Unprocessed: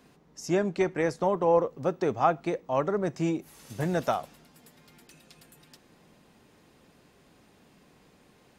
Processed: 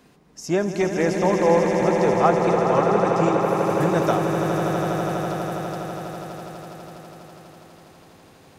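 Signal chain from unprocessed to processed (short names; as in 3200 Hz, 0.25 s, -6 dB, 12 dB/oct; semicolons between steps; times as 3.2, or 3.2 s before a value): swelling echo 82 ms, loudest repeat 8, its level -8 dB; gain +4 dB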